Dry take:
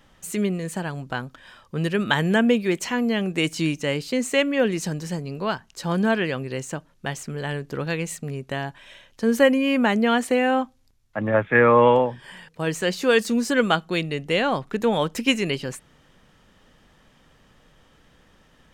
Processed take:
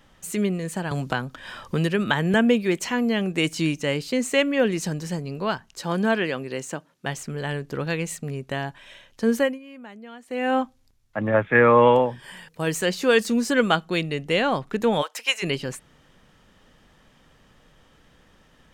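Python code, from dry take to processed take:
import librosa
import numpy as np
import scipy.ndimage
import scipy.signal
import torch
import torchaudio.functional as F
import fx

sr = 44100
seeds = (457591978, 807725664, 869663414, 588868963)

y = fx.band_squash(x, sr, depth_pct=70, at=(0.91, 2.34))
y = fx.highpass(y, sr, hz=180.0, slope=12, at=(5.82, 7.06))
y = fx.high_shelf(y, sr, hz=8800.0, db=10.0, at=(11.64, 12.86))
y = fx.highpass(y, sr, hz=650.0, slope=24, at=(15.01, 15.42), fade=0.02)
y = fx.edit(y, sr, fx.fade_down_up(start_s=9.29, length_s=1.27, db=-22.0, fade_s=0.3), tone=tone)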